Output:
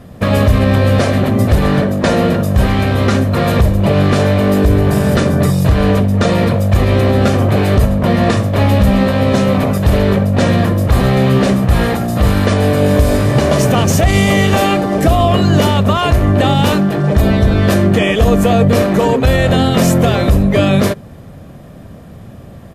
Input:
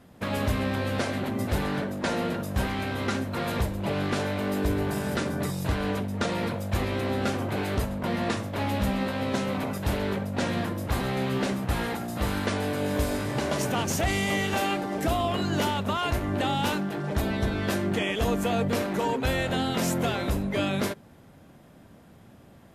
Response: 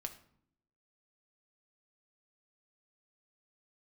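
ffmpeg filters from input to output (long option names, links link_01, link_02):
-af "lowshelf=frequency=460:gain=8,aecho=1:1:1.7:0.32,alimiter=level_in=12.5dB:limit=-1dB:release=50:level=0:latency=1,volume=-1dB"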